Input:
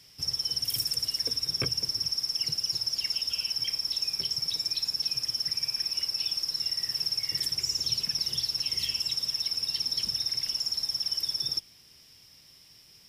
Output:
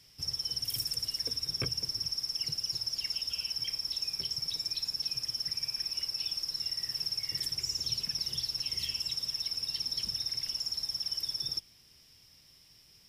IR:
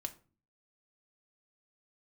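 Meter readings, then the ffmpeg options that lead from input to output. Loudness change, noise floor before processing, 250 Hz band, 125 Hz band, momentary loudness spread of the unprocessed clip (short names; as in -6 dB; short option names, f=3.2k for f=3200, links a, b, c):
-4.5 dB, -56 dBFS, n/a, -2.0 dB, 1 LU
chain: -af "lowshelf=f=83:g=7.5,volume=-4.5dB"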